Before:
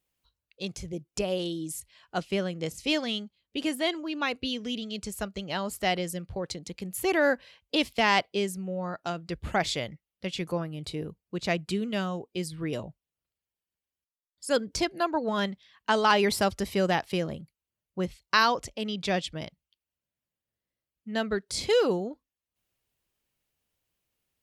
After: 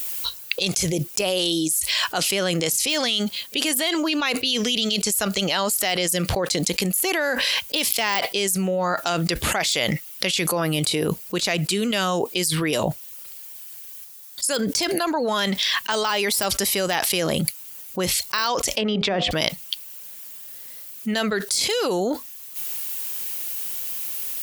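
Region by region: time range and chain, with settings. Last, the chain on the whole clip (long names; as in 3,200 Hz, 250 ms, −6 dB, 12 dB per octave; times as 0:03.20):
0:18.72–0:19.31: treble cut that deepens with the level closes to 1,200 Hz, closed at −28 dBFS + compressor whose output falls as the input rises −33 dBFS + hum removal 102.3 Hz, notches 13
whole clip: de-essing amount 65%; RIAA equalisation recording; envelope flattener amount 100%; level −2.5 dB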